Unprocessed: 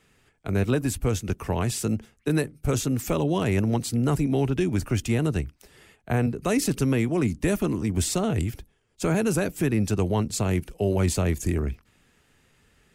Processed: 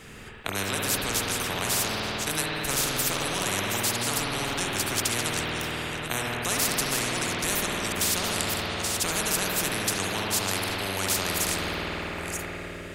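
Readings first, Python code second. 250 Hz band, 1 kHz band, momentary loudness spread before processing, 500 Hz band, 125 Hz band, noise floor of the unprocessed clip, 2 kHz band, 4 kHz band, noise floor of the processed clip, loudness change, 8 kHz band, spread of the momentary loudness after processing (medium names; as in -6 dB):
-9.5 dB, +4.0 dB, 6 LU, -5.5 dB, -10.5 dB, -65 dBFS, +7.5 dB, +11.0 dB, -38 dBFS, -1.0 dB, +7.5 dB, 6 LU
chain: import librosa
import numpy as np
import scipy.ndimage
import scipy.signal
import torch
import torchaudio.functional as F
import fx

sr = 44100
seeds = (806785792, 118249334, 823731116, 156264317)

y = fx.reverse_delay(x, sr, ms=566, wet_db=-13)
y = fx.rev_spring(y, sr, rt60_s=2.6, pass_ms=(51,), chirp_ms=25, drr_db=-2.0)
y = fx.spectral_comp(y, sr, ratio=4.0)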